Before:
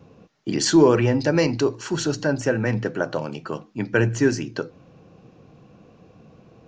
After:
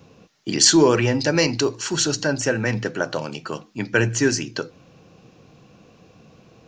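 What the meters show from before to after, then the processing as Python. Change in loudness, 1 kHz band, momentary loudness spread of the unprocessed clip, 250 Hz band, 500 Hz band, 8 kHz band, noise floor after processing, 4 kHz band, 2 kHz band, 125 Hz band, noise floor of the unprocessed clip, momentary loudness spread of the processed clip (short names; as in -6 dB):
+2.0 dB, +1.0 dB, 16 LU, -1.0 dB, -0.5 dB, +9.5 dB, -53 dBFS, +8.0 dB, +3.5 dB, -1.0 dB, -53 dBFS, 17 LU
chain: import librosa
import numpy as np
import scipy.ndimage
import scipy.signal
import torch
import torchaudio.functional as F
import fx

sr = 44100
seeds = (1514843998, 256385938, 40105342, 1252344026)

y = fx.high_shelf(x, sr, hz=2200.0, db=11.5)
y = y * librosa.db_to_amplitude(-1.0)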